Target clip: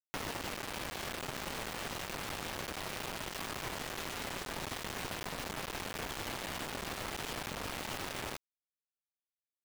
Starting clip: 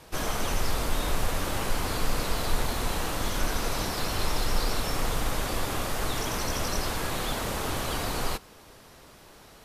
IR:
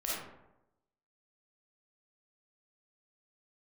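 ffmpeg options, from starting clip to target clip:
-af "highpass=f=340:t=q:w=0.5412,highpass=f=340:t=q:w=1.307,lowpass=f=3500:t=q:w=0.5176,lowpass=f=3500:t=q:w=0.7071,lowpass=f=3500:t=q:w=1.932,afreqshift=-350,acrusher=bits=4:mix=0:aa=0.000001,acompressor=threshold=0.02:ratio=6"

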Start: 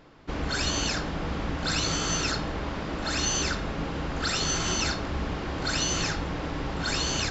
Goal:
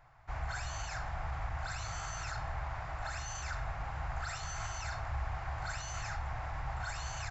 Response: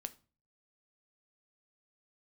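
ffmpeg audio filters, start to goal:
-af "alimiter=limit=0.075:level=0:latency=1:release=11,firequalizer=gain_entry='entry(130,0);entry(190,-28);entry(490,-19);entry(710,2);entry(1000,-2);entry(2100,-3);entry(3100,-14);entry(5300,-11);entry(7900,-4)':delay=0.05:min_phase=1,volume=0.668"

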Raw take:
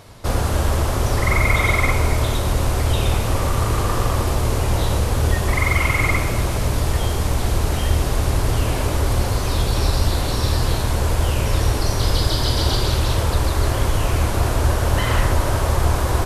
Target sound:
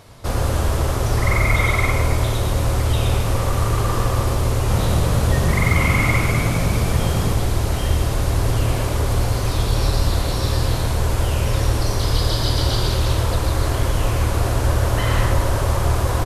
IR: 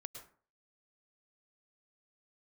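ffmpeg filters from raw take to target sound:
-filter_complex "[0:a]asplit=3[s0][s1][s2];[s0]afade=t=out:st=4.68:d=0.02[s3];[s1]asplit=9[s4][s5][s6][s7][s8][s9][s10][s11][s12];[s5]adelay=201,afreqshift=48,volume=0.473[s13];[s6]adelay=402,afreqshift=96,volume=0.279[s14];[s7]adelay=603,afreqshift=144,volume=0.164[s15];[s8]adelay=804,afreqshift=192,volume=0.0977[s16];[s9]adelay=1005,afreqshift=240,volume=0.0575[s17];[s10]adelay=1206,afreqshift=288,volume=0.0339[s18];[s11]adelay=1407,afreqshift=336,volume=0.02[s19];[s12]adelay=1608,afreqshift=384,volume=0.0117[s20];[s4][s13][s14][s15][s16][s17][s18][s19][s20]amix=inputs=9:normalize=0,afade=t=in:st=4.68:d=0.02,afade=t=out:st=7.32:d=0.02[s21];[s2]afade=t=in:st=7.32:d=0.02[s22];[s3][s21][s22]amix=inputs=3:normalize=0[s23];[1:a]atrim=start_sample=2205,atrim=end_sample=6174[s24];[s23][s24]afir=irnorm=-1:irlink=0,volume=1.5"

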